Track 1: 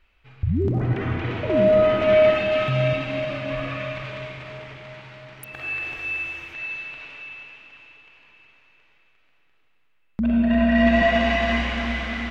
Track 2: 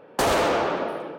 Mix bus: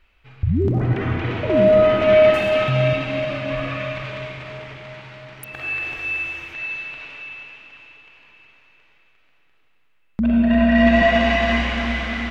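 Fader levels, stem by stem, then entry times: +3.0, −16.5 decibels; 0.00, 2.15 seconds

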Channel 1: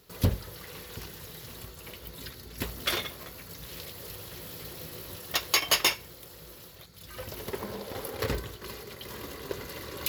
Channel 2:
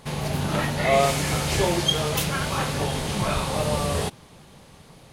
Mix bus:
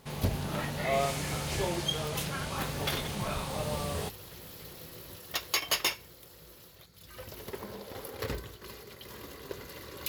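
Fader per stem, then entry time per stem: −5.0, −9.5 decibels; 0.00, 0.00 seconds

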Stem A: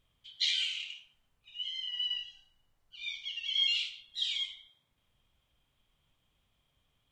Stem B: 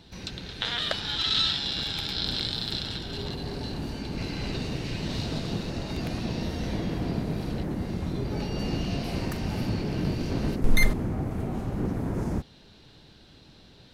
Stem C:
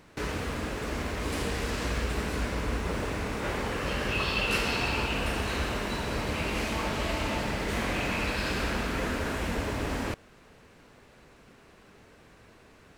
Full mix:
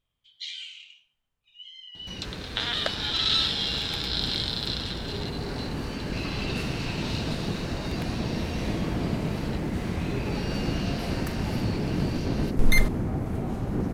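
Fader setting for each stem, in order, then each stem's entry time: −7.0, +1.0, −9.5 decibels; 0.00, 1.95, 2.05 seconds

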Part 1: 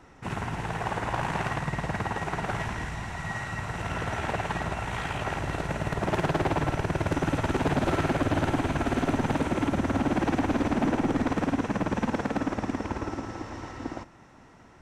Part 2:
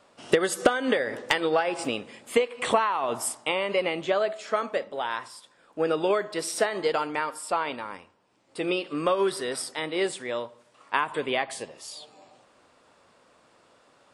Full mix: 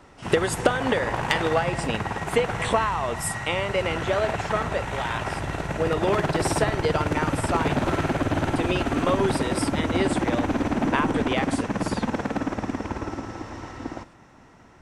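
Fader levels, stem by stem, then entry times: +1.5, 0.0 decibels; 0.00, 0.00 seconds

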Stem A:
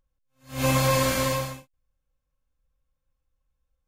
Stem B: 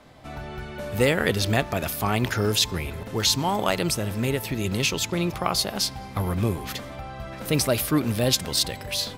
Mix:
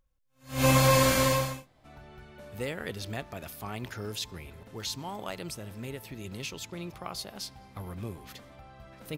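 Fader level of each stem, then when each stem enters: +0.5, −14.0 decibels; 0.00, 1.60 seconds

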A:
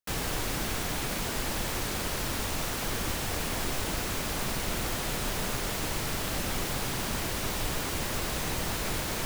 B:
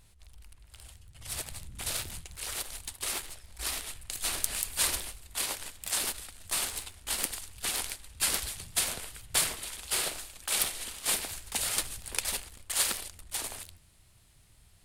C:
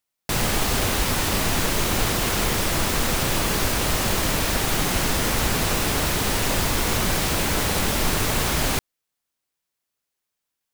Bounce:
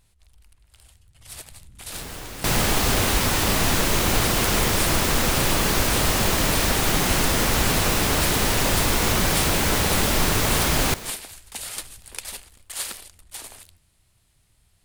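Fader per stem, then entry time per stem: −5.0, −2.5, +1.5 decibels; 1.85, 0.00, 2.15 seconds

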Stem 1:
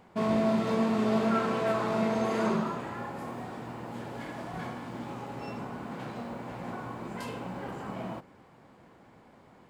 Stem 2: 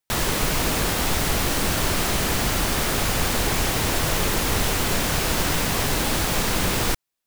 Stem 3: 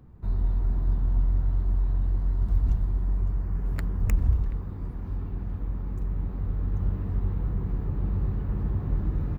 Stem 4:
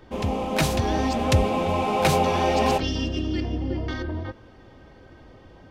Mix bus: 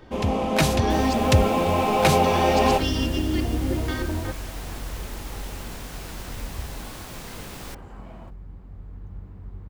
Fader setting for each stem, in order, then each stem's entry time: −7.5, −16.5, −12.0, +2.0 decibels; 0.10, 0.80, 2.30, 0.00 seconds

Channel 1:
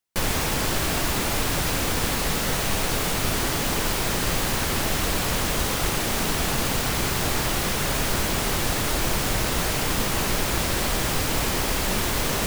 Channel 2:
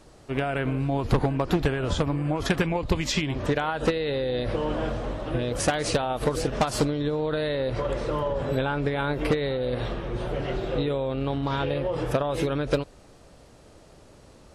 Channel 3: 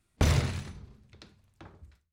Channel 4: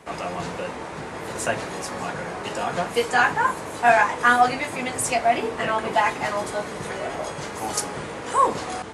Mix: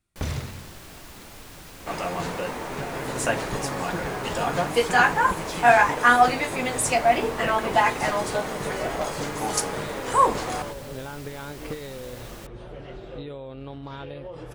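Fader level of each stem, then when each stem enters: −19.5, −10.5, −5.0, +0.5 decibels; 0.00, 2.40, 0.00, 1.80 seconds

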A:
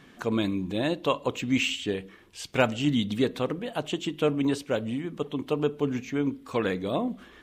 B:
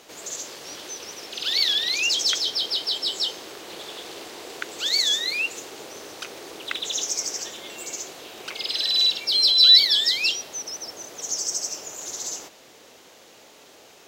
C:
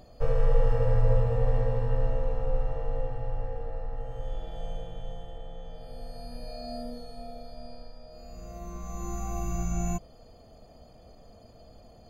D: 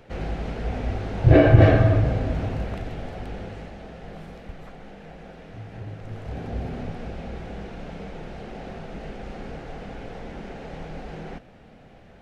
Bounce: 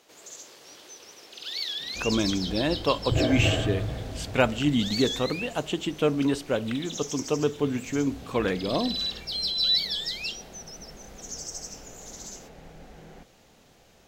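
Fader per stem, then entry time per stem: +1.0 dB, −10.5 dB, muted, −11.0 dB; 1.80 s, 0.00 s, muted, 1.85 s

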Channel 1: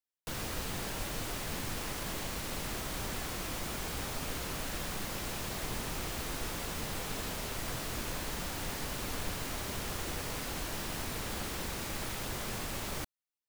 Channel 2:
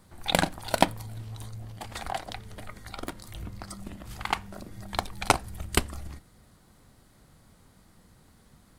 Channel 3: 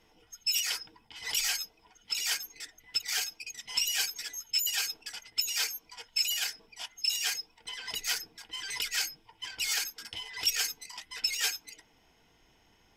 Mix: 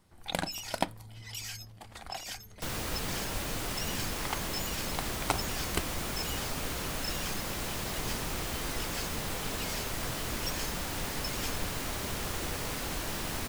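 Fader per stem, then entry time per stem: +2.5, −9.0, −11.0 decibels; 2.35, 0.00, 0.00 seconds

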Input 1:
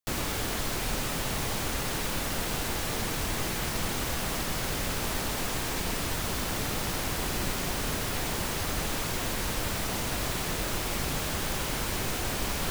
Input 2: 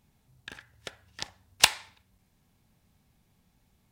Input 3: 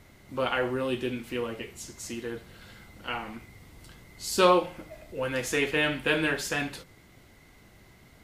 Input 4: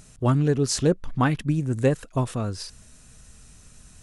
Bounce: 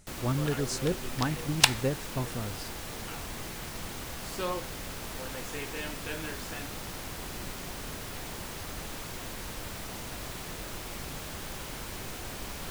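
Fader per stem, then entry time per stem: −8.5, −1.0, −13.5, −9.0 decibels; 0.00, 0.00, 0.00, 0.00 seconds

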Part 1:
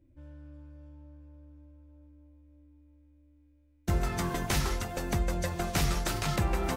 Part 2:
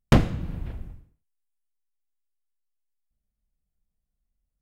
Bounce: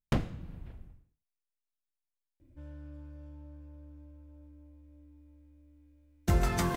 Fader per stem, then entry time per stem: +2.0, −12.0 decibels; 2.40, 0.00 seconds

